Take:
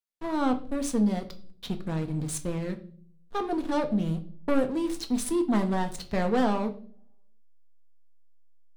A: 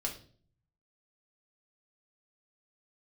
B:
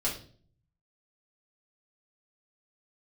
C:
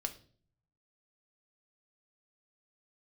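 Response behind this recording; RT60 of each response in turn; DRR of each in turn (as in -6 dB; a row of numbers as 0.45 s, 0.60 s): C; 0.45 s, 0.45 s, 0.45 s; -0.5 dB, -6.5 dB, 5.5 dB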